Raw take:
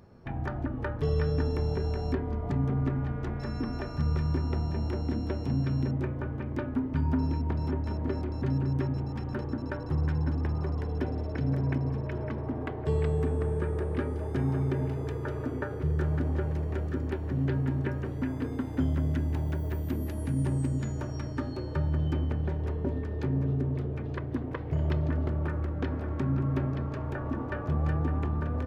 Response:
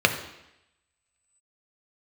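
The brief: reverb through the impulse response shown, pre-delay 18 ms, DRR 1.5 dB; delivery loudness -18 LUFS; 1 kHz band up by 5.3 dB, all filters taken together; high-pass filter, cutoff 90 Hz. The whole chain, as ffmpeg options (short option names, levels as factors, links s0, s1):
-filter_complex "[0:a]highpass=90,equalizer=f=1000:t=o:g=6.5,asplit=2[s0][s1];[1:a]atrim=start_sample=2205,adelay=18[s2];[s1][s2]afir=irnorm=-1:irlink=0,volume=0.106[s3];[s0][s3]amix=inputs=2:normalize=0,volume=3.76"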